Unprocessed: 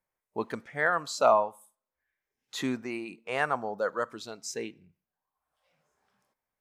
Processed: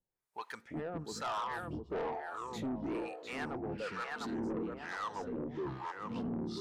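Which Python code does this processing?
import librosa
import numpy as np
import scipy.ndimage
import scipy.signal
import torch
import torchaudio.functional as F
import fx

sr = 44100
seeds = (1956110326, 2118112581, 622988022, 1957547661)

p1 = fx.notch(x, sr, hz=1100.0, q=11.0)
p2 = p1 + fx.echo_tape(p1, sr, ms=702, feedback_pct=50, wet_db=-3.0, lp_hz=1200.0, drive_db=7.0, wow_cents=33, dry=0)
p3 = fx.echo_pitch(p2, sr, ms=199, semitones=-6, count=3, db_per_echo=-3.0)
p4 = fx.peak_eq(p3, sr, hz=610.0, db=-9.0, octaves=0.28)
p5 = fx.rider(p4, sr, range_db=4, speed_s=0.5)
p6 = p4 + F.gain(torch.from_numpy(p5), 1.0).numpy()
p7 = fx.harmonic_tremolo(p6, sr, hz=1.1, depth_pct=100, crossover_hz=710.0)
p8 = 10.0 ** (-24.5 / 20.0) * np.tanh(p7 / 10.0 ** (-24.5 / 20.0))
y = F.gain(torch.from_numpy(p8), -8.0).numpy()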